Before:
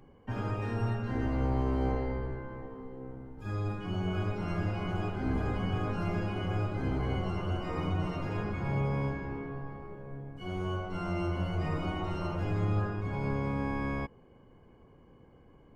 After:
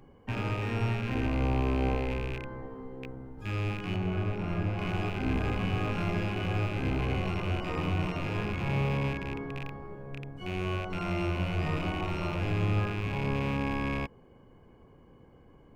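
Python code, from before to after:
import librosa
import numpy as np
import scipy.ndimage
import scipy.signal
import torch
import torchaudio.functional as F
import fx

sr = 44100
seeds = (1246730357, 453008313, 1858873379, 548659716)

y = fx.rattle_buzz(x, sr, strikes_db=-38.0, level_db=-30.0)
y = fx.high_shelf(y, sr, hz=2100.0, db=-10.5, at=(3.96, 4.79))
y = F.gain(torch.from_numpy(y), 1.5).numpy()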